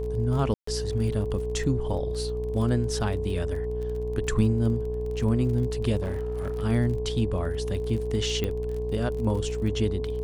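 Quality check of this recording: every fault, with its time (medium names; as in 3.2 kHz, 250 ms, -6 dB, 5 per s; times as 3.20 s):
buzz 60 Hz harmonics 18 -32 dBFS
crackle 34 per s -34 dBFS
whine 430 Hz -30 dBFS
0.54–0.67 s: dropout 134 ms
6.02–6.63 s: clipped -25.5 dBFS
8.44 s: pop -15 dBFS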